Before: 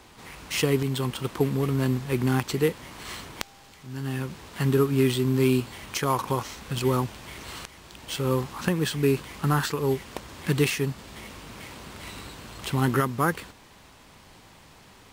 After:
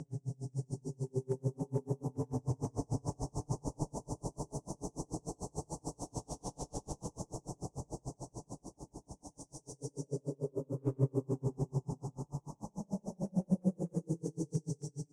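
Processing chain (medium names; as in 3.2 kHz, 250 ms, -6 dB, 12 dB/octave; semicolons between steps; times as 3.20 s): Chebyshev band-stop 820–5700 Hz, order 4; peaking EQ 8.9 kHz +9.5 dB 1 oct; comb 7 ms, depth 78%; reverse; compression 12:1, threshold -45 dBFS, peak gain reduction 31.5 dB; reverse; Paulstretch 6.7×, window 0.25 s, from 6.69 s; hard clipper -37.5 dBFS, distortion -31 dB; ever faster or slower copies 534 ms, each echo +1 st, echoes 3; distance through air 120 m; on a send at -4.5 dB: reverberation RT60 1.0 s, pre-delay 58 ms; on the sum: logarithmic tremolo 6.8 Hz, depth 36 dB; trim +13 dB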